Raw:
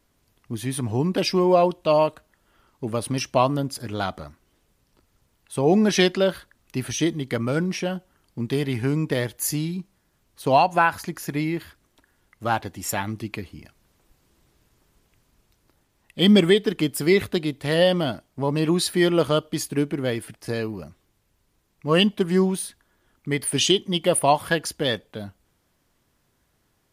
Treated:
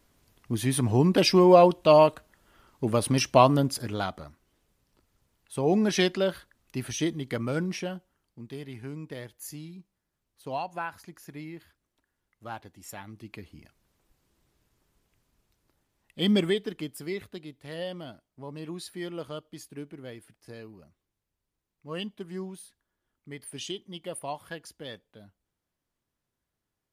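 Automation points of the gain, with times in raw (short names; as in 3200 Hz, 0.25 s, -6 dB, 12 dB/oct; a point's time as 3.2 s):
3.7 s +1.5 dB
4.13 s -5.5 dB
7.76 s -5.5 dB
8.41 s -15.5 dB
13.08 s -15.5 dB
13.53 s -8 dB
16.42 s -8 dB
17.24 s -17 dB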